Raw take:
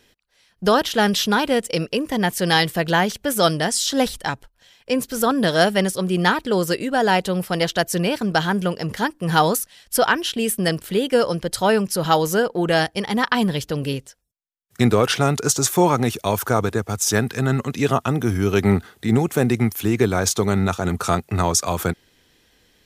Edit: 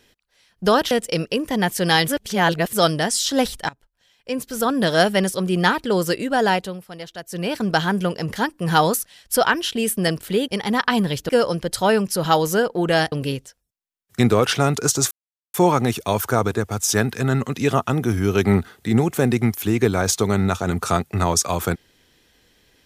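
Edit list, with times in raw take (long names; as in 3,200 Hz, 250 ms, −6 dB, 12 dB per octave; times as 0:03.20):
0:00.91–0:01.52: remove
0:02.69–0:03.34: reverse
0:04.30–0:05.51: fade in, from −19.5 dB
0:07.07–0:08.21: duck −14.5 dB, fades 0.34 s linear
0:12.92–0:13.73: move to 0:11.09
0:15.72: splice in silence 0.43 s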